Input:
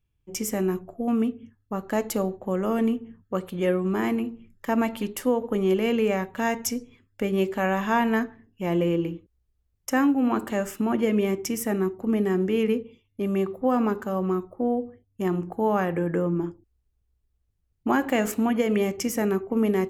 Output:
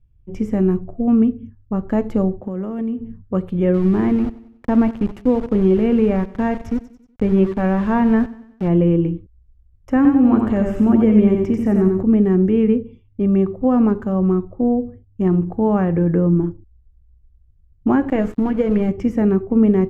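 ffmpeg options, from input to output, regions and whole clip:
-filter_complex "[0:a]asettb=1/sr,asplit=3[a][b][c];[a]atrim=end=2.404[d];[b]atrim=start=2.4:end=3,asetpts=PTS-STARTPTS,afade=t=in:d=0.004:c=qsin,afade=t=out:st=0.596:d=0.004:c=qsin,highpass=130,acompressor=threshold=-29dB:ratio=6:attack=3.2:release=140:knee=1:detection=peak[e];[c]atrim=start=2.996[f];[d][e]acrossfade=d=0.004:c1=hsin:c2=qsin[g];[g][f]acrossfade=d=0.004:c1=qsin:c2=hsin,asettb=1/sr,asplit=3[h][i][j];[h]atrim=end=3.744[k];[i]atrim=start=3.74:end=8.68,asetpts=PTS-STARTPTS,afade=t=in:d=0.004:c=qsin,afade=t=out:st=4.936:d=0.004:c=qsin,aeval=exprs='val(0)*gte(abs(val(0)),0.0266)':c=same,aecho=1:1:93|186|279|372:0.106|0.054|0.0276|0.0141,atrim=end_sample=217854[l];[j]atrim=start=8.676[m];[k][l]acrossfade=d=0.004:c1=hsin:c2=qsin[n];[n][m]acrossfade=d=0.004:c1=qsin:c2=hsin,asettb=1/sr,asplit=3[o][p][q];[o]atrim=end=9.964[r];[p]atrim=start=9.96:end=12.03,asetpts=PTS-STARTPTS,afade=t=in:d=0.004:c=qsin,afade=t=out:st=2.066:d=0.004:c=qsin,acompressor=mode=upward:threshold=-24dB:ratio=2.5:attack=3.2:release=140:knee=2.83:detection=peak,aecho=1:1:90|180|270|360:0.562|0.191|0.065|0.0221,atrim=end_sample=91287[s];[q]atrim=start=12.026[t];[r][s]acrossfade=d=0.004:c1=hsin:c2=qsin[u];[u][t]acrossfade=d=0.004:c1=qsin:c2=hsin,asettb=1/sr,asplit=3[v][w][x];[v]atrim=end=18.104[y];[w]atrim=start=18.1:end=18.89,asetpts=PTS-STARTPTS,afade=t=in:d=0.004:c=qsin,afade=t=out:st=0.786:d=0.004:c=qsin,aecho=1:1:6.4:0.37,atrim=end_sample=34839,aeval=exprs='sgn(val(0))*max(abs(val(0))-0.0133,0)':c=same,acrusher=bits=7:mode=log:mix=0:aa=0.000001[z];[x]atrim=start=18.886[aa];[y][z]acrossfade=d=0.004:c1=hsin:c2=qsin[ab];[ab][aa]acrossfade=d=0.004:c1=qsin:c2=hsin,aemphasis=mode=reproduction:type=riaa,acrossover=split=3000[ac][ad];[ad]acompressor=threshold=-52dB:ratio=4:attack=1:release=60[ae];[ac][ae]amix=inputs=2:normalize=0,lowshelf=f=480:g=3"

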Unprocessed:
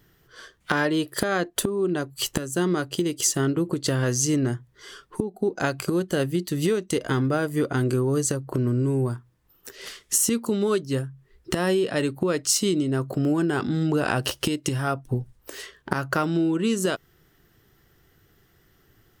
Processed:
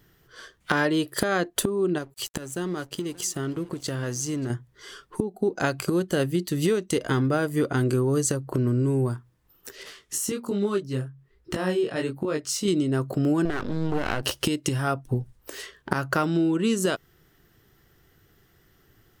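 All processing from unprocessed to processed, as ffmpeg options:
-filter_complex "[0:a]asettb=1/sr,asplit=3[a][b][c];[a]atrim=end=1.984[d];[b]atrim=start=1.98:end=4.5,asetpts=PTS-STARTPTS,afade=t=in:d=0.004:c=qsin,afade=t=out:st=2.516:d=0.004:c=qsin,aecho=1:1:579:0.075,atrim=end_sample=111132,acompressor=threshold=-35dB:ratio=1.5:attack=3.2:release=140:knee=1:detection=peak,aeval=exprs='sgn(val(0))*max(abs(val(0))-0.00398,0)':c=same[e];[c]atrim=start=4.496[f];[d][e]acrossfade=d=0.004:c1=hsin:c2=qsin[g];[g][f]acrossfade=d=0.004:c1=qsin:c2=hsin,asettb=1/sr,asplit=3[h][i][j];[h]atrim=end=9.834[k];[i]atrim=start=9.83:end=12.68,asetpts=PTS-STARTPTS,afade=t=in:d=0.004:c=qsin,afade=t=out:st=2.846:d=0.004:c=qsin,equalizer=f=11k:t=o:w=2.6:g=-4.5,flanger=delay=19.5:depth=5:speed=1.2[l];[j]atrim=start=12.676[m];[k][l]acrossfade=d=0.004:c1=hsin:c2=qsin[n];[n][m]acrossfade=d=0.004:c1=qsin:c2=hsin,asettb=1/sr,asplit=3[o][p][q];[o]atrim=end=13.454[r];[p]atrim=start=13.45:end=14.23,asetpts=PTS-STARTPTS,afade=t=in:d=0.004:c=qsin,afade=t=out:st=0.776:d=0.004:c=qsin,acrossover=split=3700[s][t];[t]acompressor=threshold=-56dB:ratio=4:attack=1:release=60[u];[s][u]amix=inputs=2:normalize=0,aeval=exprs='max(val(0),0)':c=same[v];[q]atrim=start=14.226[w];[r][v]acrossfade=d=0.004:c1=hsin:c2=qsin[x];[x][w]acrossfade=d=0.004:c1=qsin:c2=hsin"

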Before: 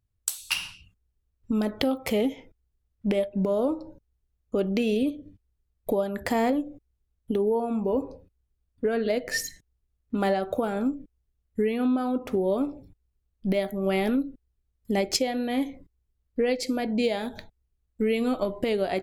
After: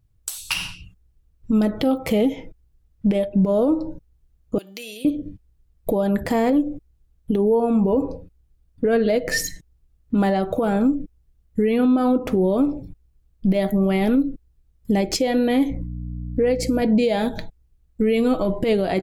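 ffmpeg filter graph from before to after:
-filter_complex "[0:a]asettb=1/sr,asplit=3[a][b][c];[a]atrim=end=4.584[d];[b]atrim=start=4.58:end=5.05,asetpts=PTS-STARTPTS,afade=t=in:d=0.004:c=qsin,afade=t=out:st=0.466:d=0.004:c=qsin,aderivative,bandreject=f=296.7:t=h:w=4,bandreject=f=593.4:t=h:w=4,bandreject=f=890.1:t=h:w=4,bandreject=f=1.1868k:t=h:w=4,bandreject=f=1.4835k:t=h:w=4,bandreject=f=1.7802k:t=h:w=4,bandreject=f=2.0769k:t=h:w=4,bandreject=f=2.3736k:t=h:w=4,bandreject=f=2.6703k:t=h:w=4,bandreject=f=2.967k:t=h:w=4,bandreject=f=3.2637k:t=h:w=4,bandreject=f=3.5604k:t=h:w=4,bandreject=f=3.8571k:t=h:w=4,bandreject=f=4.1538k:t=h:w=4,bandreject=f=4.4505k:t=h:w=4,bandreject=f=4.7472k:t=h:w=4,bandreject=f=5.0439k:t=h:w=4,bandreject=f=5.3406k:t=h:w=4,bandreject=f=5.6373k:t=h:w=4,bandreject=f=5.934k:t=h:w=4,bandreject=f=6.2307k:t=h:w=4,bandreject=f=6.5274k:t=h:w=4,bandreject=f=6.8241k:t=h:w=4,bandreject=f=7.1208k:t=h:w=4,bandreject=f=7.4175k:t=h:w=4,bandreject=f=7.7142k:t=h:w=4,bandreject=f=8.0109k:t=h:w=4,bandreject=f=8.3076k:t=h:w=4,bandreject=f=8.6043k:t=h:w=4,bandreject=f=8.901k:t=h:w=4,bandreject=f=9.1977k:t=h:w=4[e];[c]atrim=start=5.046[f];[d][e]acrossfade=d=0.004:c1=hsin:c2=qsin[g];[g][f]acrossfade=d=0.004:c1=qsin:c2=hsin,asettb=1/sr,asplit=3[h][i][j];[h]atrim=end=15.704[k];[i]atrim=start=15.7:end=16.82,asetpts=PTS-STARTPTS,afade=t=in:d=0.004:c=qsin,afade=t=out:st=1.116:d=0.004:c=qsin,equalizer=f=3.6k:w=1.6:g=-8.5,aeval=exprs='val(0)+0.00794*(sin(2*PI*60*n/s)+sin(2*PI*2*60*n/s)/2+sin(2*PI*3*60*n/s)/3+sin(2*PI*4*60*n/s)/4+sin(2*PI*5*60*n/s)/5)':c=same[l];[j]atrim=start=16.816[m];[k][l]acrossfade=d=0.004:c1=hsin:c2=qsin[n];[n][m]acrossfade=d=0.004:c1=qsin:c2=hsin,lowshelf=f=390:g=8.5,aecho=1:1:6.2:0.3,alimiter=limit=-18dB:level=0:latency=1:release=95,volume=6.5dB"

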